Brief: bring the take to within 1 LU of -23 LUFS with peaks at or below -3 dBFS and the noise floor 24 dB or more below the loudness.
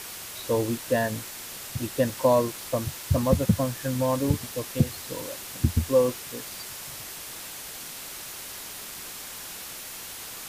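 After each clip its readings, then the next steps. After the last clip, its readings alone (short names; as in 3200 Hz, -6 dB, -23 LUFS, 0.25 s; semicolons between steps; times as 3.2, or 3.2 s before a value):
noise floor -40 dBFS; noise floor target -53 dBFS; loudness -28.5 LUFS; peak -8.0 dBFS; loudness target -23.0 LUFS
-> denoiser 13 dB, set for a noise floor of -40 dBFS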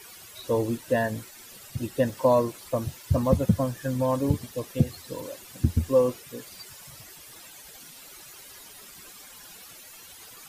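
noise floor -47 dBFS; noise floor target -51 dBFS
-> denoiser 6 dB, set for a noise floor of -47 dBFS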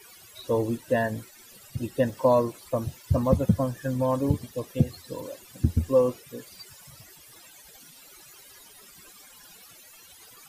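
noise floor -51 dBFS; loudness -26.5 LUFS; peak -8.0 dBFS; loudness target -23.0 LUFS
-> gain +3.5 dB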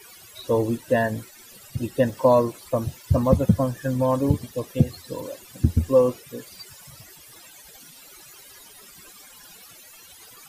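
loudness -23.0 LUFS; peak -4.5 dBFS; noise floor -48 dBFS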